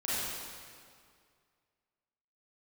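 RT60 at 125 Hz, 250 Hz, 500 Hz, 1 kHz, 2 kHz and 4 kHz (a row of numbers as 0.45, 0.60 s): 2.3, 2.2, 2.1, 2.1, 1.9, 1.7 s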